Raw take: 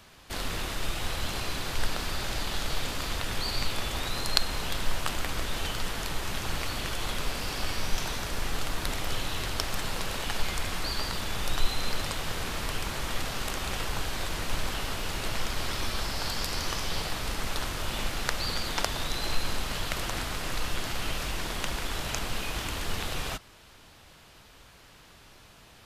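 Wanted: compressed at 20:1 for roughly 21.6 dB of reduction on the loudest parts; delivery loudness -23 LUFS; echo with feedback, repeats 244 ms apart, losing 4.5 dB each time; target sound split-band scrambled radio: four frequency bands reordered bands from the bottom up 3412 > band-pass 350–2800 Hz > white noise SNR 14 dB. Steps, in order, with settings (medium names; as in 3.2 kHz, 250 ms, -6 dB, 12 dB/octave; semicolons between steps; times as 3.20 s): compression 20:1, threshold -39 dBFS; feedback delay 244 ms, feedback 60%, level -4.5 dB; four frequency bands reordered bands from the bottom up 3412; band-pass 350–2800 Hz; white noise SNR 14 dB; trim +18.5 dB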